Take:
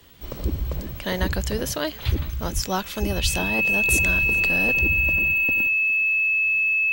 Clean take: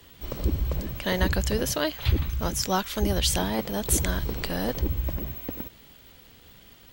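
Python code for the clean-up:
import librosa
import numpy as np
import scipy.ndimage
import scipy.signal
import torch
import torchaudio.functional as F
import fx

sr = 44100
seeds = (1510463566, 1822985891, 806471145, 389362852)

y = fx.notch(x, sr, hz=2600.0, q=30.0)
y = fx.fix_deplosive(y, sr, at_s=(2.54, 3.22))
y = fx.fix_echo_inverse(y, sr, delay_ms=410, level_db=-23.0)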